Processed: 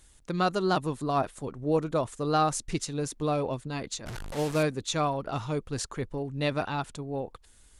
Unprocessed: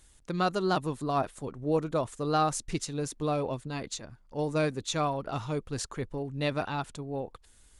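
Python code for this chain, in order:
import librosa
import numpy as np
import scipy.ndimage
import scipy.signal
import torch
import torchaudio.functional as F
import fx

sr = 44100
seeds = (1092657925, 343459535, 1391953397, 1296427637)

y = fx.delta_mod(x, sr, bps=64000, step_db=-32.5, at=(4.06, 4.63))
y = F.gain(torch.from_numpy(y), 1.5).numpy()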